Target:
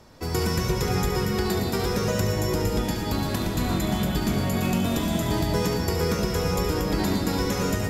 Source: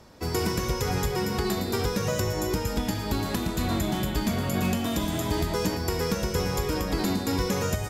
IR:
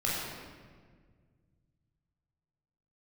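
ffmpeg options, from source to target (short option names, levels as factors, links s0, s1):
-filter_complex "[0:a]asplit=2[s0][s1];[1:a]atrim=start_sample=2205,adelay=71[s2];[s1][s2]afir=irnorm=-1:irlink=0,volume=0.266[s3];[s0][s3]amix=inputs=2:normalize=0"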